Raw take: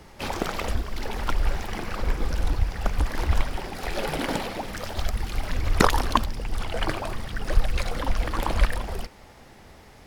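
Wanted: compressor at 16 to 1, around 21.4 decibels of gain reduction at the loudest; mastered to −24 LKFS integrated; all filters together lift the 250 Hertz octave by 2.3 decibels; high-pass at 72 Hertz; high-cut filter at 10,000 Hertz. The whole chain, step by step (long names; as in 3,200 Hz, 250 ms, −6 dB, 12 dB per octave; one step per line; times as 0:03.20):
high-pass filter 72 Hz
low-pass filter 10,000 Hz
parametric band 250 Hz +3 dB
downward compressor 16 to 1, threshold −36 dBFS
level +17.5 dB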